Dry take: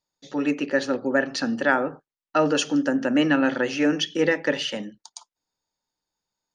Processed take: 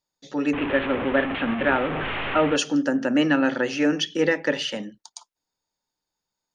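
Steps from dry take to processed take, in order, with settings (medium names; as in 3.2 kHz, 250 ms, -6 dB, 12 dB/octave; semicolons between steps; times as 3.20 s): 0.53–2.56 s: one-bit delta coder 16 kbps, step -21 dBFS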